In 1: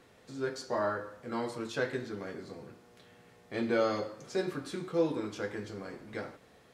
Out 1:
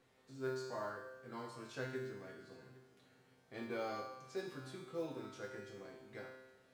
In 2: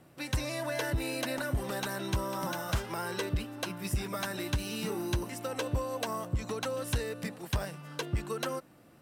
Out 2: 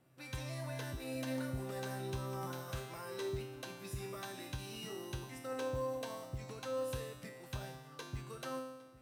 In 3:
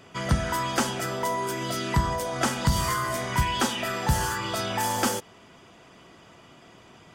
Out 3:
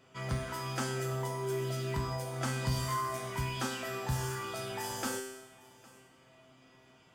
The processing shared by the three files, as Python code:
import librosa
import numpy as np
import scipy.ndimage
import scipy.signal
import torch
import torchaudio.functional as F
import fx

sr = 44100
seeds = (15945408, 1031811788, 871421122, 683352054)

y = fx.comb_fb(x, sr, f0_hz=130.0, decay_s=1.0, harmonics='all', damping=0.0, mix_pct=90)
y = fx.mod_noise(y, sr, seeds[0], snr_db=33)
y = y + 10.0 ** (-22.5 / 20.0) * np.pad(y, (int(809 * sr / 1000.0), 0))[:len(y)]
y = y * 10.0 ** (4.0 / 20.0)